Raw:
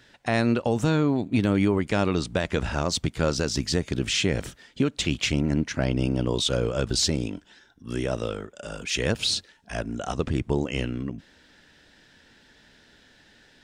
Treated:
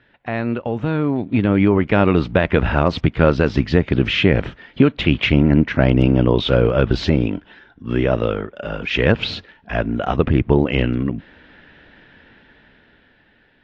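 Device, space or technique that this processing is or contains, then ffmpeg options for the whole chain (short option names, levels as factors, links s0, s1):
action camera in a waterproof case: -af "lowpass=f=2900:w=0.5412,lowpass=f=2900:w=1.3066,dynaudnorm=f=440:g=7:m=4.73" -ar 24000 -c:a aac -b:a 48k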